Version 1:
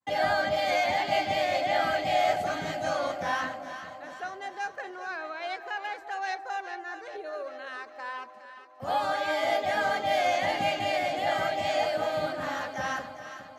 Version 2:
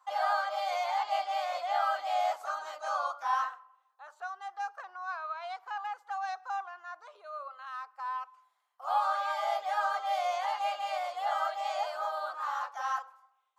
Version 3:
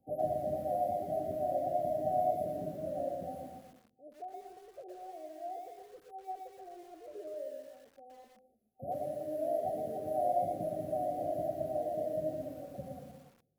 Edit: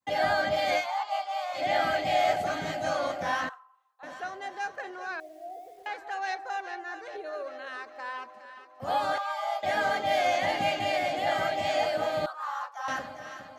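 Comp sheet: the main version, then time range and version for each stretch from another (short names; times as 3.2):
1
0.82–1.58 from 2, crossfade 0.10 s
3.49–4.03 from 2
5.2–5.86 from 3
9.18–9.63 from 2
12.26–12.88 from 2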